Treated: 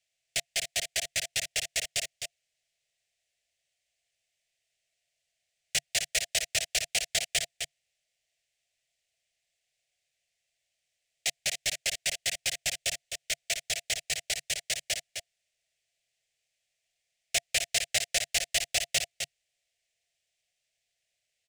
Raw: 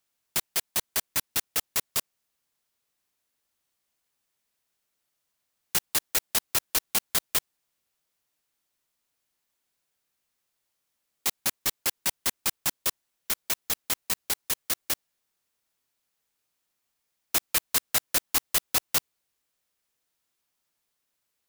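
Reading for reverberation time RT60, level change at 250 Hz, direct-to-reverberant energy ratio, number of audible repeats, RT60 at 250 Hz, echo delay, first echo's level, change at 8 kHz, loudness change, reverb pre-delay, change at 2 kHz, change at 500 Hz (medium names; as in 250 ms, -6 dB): no reverb, -12.5 dB, no reverb, 1, no reverb, 258 ms, -7.0 dB, -0.5 dB, -3.0 dB, no reverb, +2.5 dB, 0.0 dB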